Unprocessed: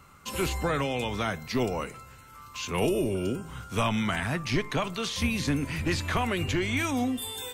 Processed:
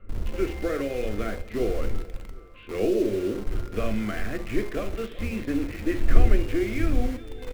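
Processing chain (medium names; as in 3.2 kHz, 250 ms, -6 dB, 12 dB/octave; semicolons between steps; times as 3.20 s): wind noise 89 Hz -31 dBFS; Gaussian low-pass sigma 4.3 samples; static phaser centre 380 Hz, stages 4; de-hum 58.21 Hz, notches 16; in parallel at -7.5 dB: word length cut 6-bit, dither none; on the sum: feedback delay 377 ms, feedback 42%, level -19 dB; on a send at -9 dB: reverberation, pre-delay 4 ms; on the sum: trim +1 dB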